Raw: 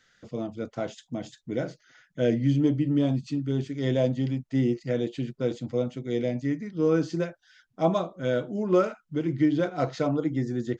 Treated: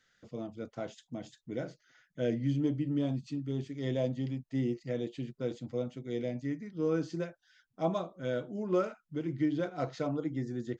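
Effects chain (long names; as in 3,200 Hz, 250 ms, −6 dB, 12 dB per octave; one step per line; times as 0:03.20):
0:03.27–0:05.33: notch filter 1,500 Hz, Q 10
level −7.5 dB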